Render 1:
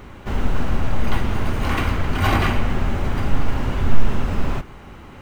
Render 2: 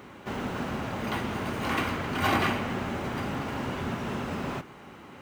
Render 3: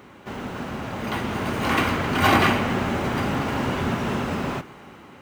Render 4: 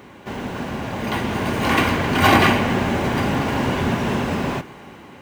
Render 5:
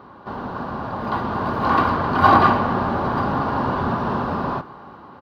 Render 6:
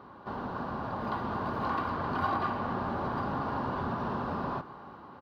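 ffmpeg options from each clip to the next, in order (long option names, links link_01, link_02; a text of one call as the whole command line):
ffmpeg -i in.wav -af "highpass=160,volume=-4dB" out.wav
ffmpeg -i in.wav -af "dynaudnorm=framelen=370:gausssize=7:maxgain=8dB" out.wav
ffmpeg -i in.wav -af "bandreject=frequency=1300:width=7.9,volume=4dB" out.wav
ffmpeg -i in.wav -af "firequalizer=gain_entry='entry(400,0);entry(1200,10);entry(2100,-13);entry(4400,-2);entry(7300,-26);entry(11000,-16)':delay=0.05:min_phase=1,volume=-3dB" out.wav
ffmpeg -i in.wav -af "acompressor=threshold=-24dB:ratio=3,volume=-6.5dB" out.wav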